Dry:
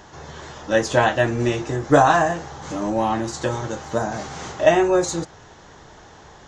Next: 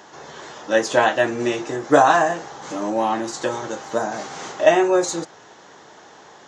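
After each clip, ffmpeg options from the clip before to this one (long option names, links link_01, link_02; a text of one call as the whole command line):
ffmpeg -i in.wav -af "highpass=250,volume=1dB" out.wav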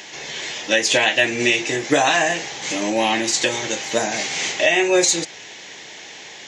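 ffmpeg -i in.wav -af "highshelf=frequency=1700:width_type=q:width=3:gain=9.5,alimiter=limit=-7.5dB:level=0:latency=1:release=226,volume=2.5dB" out.wav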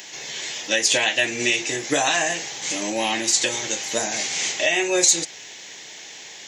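ffmpeg -i in.wav -af "crystalizer=i=2:c=0,volume=-5.5dB" out.wav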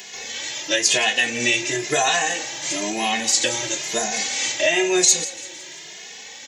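ffmpeg -i in.wav -filter_complex "[0:a]aecho=1:1:170|340|510|680:0.141|0.072|0.0367|0.0187,asplit=2[link_01][link_02];[link_02]adelay=2.4,afreqshift=1[link_03];[link_01][link_03]amix=inputs=2:normalize=1,volume=4dB" out.wav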